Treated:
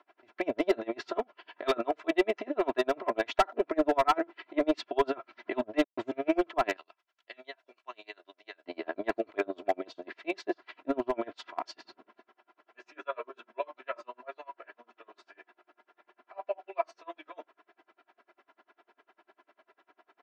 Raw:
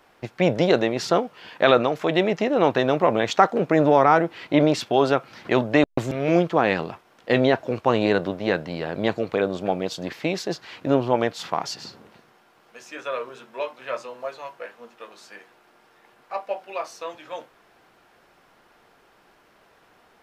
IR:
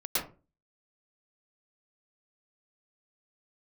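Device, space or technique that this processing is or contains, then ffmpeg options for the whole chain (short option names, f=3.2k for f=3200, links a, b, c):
helicopter radio: -filter_complex "[0:a]asettb=1/sr,asplit=3[a][b][c];[a]atrim=end=6.764[d];[b]atrim=start=6.76:end=8.66,asetpts=PTS-STARTPTS,afade=t=in:d=0.004:c=qsin,afade=t=out:st=1.896:d=0.004:c=qsin,aderivative[e];[c]atrim=start=8.656[f];[d][e]acrossfade=d=0.004:c1=hsin:c2=qsin[g];[g][f]acrossfade=d=0.004:c1=qsin:c2=hsin,highpass=330,lowpass=2.7k,aeval=exprs='val(0)*pow(10,-33*(0.5-0.5*cos(2*PI*10*n/s))/20)':c=same,asoftclip=type=hard:threshold=-17.5dB,aecho=1:1:3:0.96,volume=-2.5dB"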